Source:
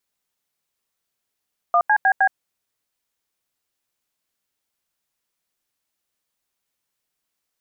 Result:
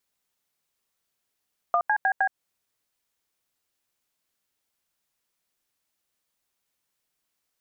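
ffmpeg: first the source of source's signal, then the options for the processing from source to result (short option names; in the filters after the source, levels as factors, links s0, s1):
-f lavfi -i "aevalsrc='0.168*clip(min(mod(t,0.155),0.07-mod(t,0.155))/0.002,0,1)*(eq(floor(t/0.155),0)*(sin(2*PI*697*mod(t,0.155))+sin(2*PI*1209*mod(t,0.155)))+eq(floor(t/0.155),1)*(sin(2*PI*852*mod(t,0.155))+sin(2*PI*1633*mod(t,0.155)))+eq(floor(t/0.155),2)*(sin(2*PI*770*mod(t,0.155))+sin(2*PI*1633*mod(t,0.155)))+eq(floor(t/0.155),3)*(sin(2*PI*770*mod(t,0.155))+sin(2*PI*1633*mod(t,0.155))))':d=0.62:s=44100"
-af "acompressor=threshold=0.0891:ratio=6"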